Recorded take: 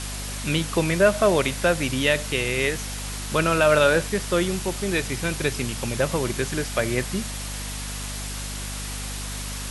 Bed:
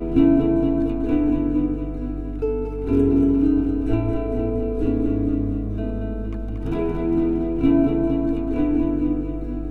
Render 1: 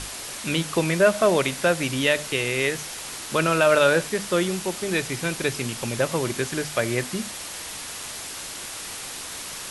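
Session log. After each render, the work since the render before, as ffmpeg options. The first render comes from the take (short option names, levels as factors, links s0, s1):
-af "bandreject=f=50:t=h:w=6,bandreject=f=100:t=h:w=6,bandreject=f=150:t=h:w=6,bandreject=f=200:t=h:w=6,bandreject=f=250:t=h:w=6"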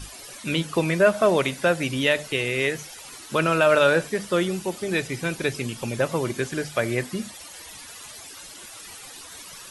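-af "afftdn=nr=13:nf=-36"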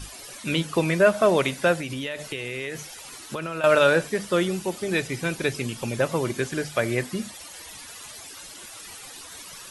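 -filter_complex "[0:a]asettb=1/sr,asplit=3[s0][s1][s2];[s0]atrim=end=1.754[s3];[s1]atrim=start=1.75:end=3.64,asetpts=PTS-STARTPTS,afade=t=in:d=0.004:c=qsin,afade=t=out:st=1.886:d=0.004:c=qsin,acompressor=threshold=0.0447:ratio=6:attack=3.2:release=140:knee=1:detection=peak[s4];[s2]atrim=start=3.636[s5];[s3][s4]acrossfade=d=0.004:c1=hsin:c2=qsin[s6];[s6][s5]acrossfade=d=0.004:c1=qsin:c2=hsin"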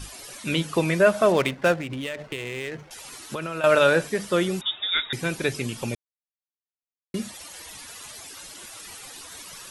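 -filter_complex "[0:a]asettb=1/sr,asplit=3[s0][s1][s2];[s0]atrim=end=1.324[s3];[s1]atrim=start=1.32:end=2.91,asetpts=PTS-STARTPTS,afade=t=in:d=0.004:c=qsin,afade=t=out:st=1.586:d=0.004:c=qsin,adynamicsmooth=sensitivity=6.5:basefreq=820[s4];[s2]atrim=start=2.906[s5];[s3][s4]acrossfade=d=0.004:c1=hsin:c2=qsin[s6];[s6][s5]acrossfade=d=0.004:c1=qsin:c2=hsin,asettb=1/sr,asplit=3[s7][s8][s9];[s7]atrim=end=4.614[s10];[s8]atrim=start=4.61:end=5.13,asetpts=PTS-STARTPTS,afade=t=in:d=0.004:c=qsin,afade=t=out:st=0.516:d=0.004:c=qsin,lowpass=f=3300:t=q:w=0.5098,lowpass=f=3300:t=q:w=0.6013,lowpass=f=3300:t=q:w=0.9,lowpass=f=3300:t=q:w=2.563,afreqshift=-3900[s11];[s9]atrim=start=5.126[s12];[s10][s11]acrossfade=d=0.004:c1=hsin:c2=qsin[s13];[s13][s12]acrossfade=d=0.004:c1=qsin:c2=hsin,asplit=3[s14][s15][s16];[s14]atrim=end=5.95,asetpts=PTS-STARTPTS,afade=t=out:st=5.946:d=0.004:c=hsin[s17];[s15]atrim=start=5.95:end=7.14,asetpts=PTS-STARTPTS,volume=0[s18];[s16]atrim=start=7.14,asetpts=PTS-STARTPTS,afade=t=in:d=0.004:c=hsin[s19];[s17][s18][s19]concat=n=3:v=0:a=1"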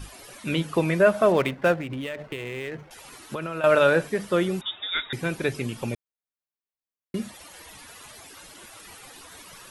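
-af "equalizer=f=6600:w=0.53:g=-7.5"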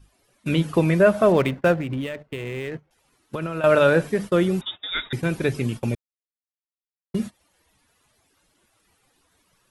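-af "agate=range=0.0891:threshold=0.02:ratio=16:detection=peak,lowshelf=f=340:g=7.5"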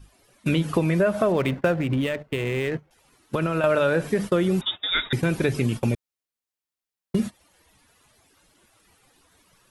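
-filter_complex "[0:a]asplit=2[s0][s1];[s1]alimiter=limit=0.141:level=0:latency=1:release=35,volume=0.75[s2];[s0][s2]amix=inputs=2:normalize=0,acompressor=threshold=0.126:ratio=5"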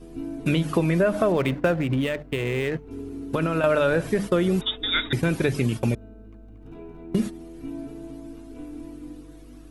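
-filter_complex "[1:a]volume=0.126[s0];[0:a][s0]amix=inputs=2:normalize=0"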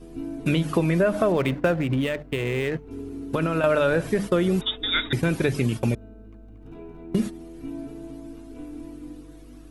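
-af anull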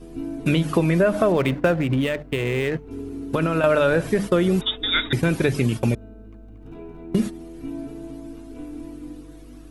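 -af "volume=1.33"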